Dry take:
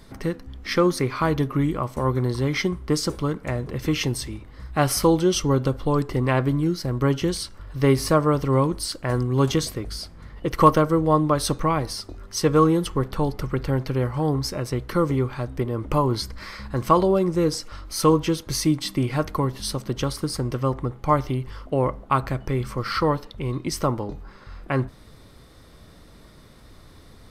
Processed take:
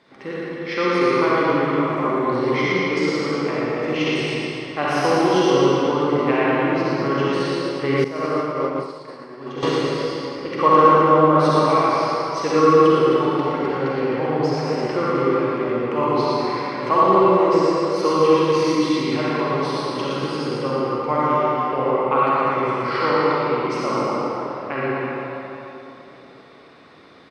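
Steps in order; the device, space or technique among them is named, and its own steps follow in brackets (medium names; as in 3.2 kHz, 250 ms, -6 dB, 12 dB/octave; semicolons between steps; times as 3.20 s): station announcement (band-pass 300–3600 Hz; peaking EQ 2.4 kHz +4 dB 0.55 oct; loudspeakers at several distances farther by 40 m -4 dB, 89 m -8 dB; reverberation RT60 3.3 s, pre-delay 39 ms, DRR -7.5 dB); 8.04–9.63 s: expander -5 dBFS; trim -3.5 dB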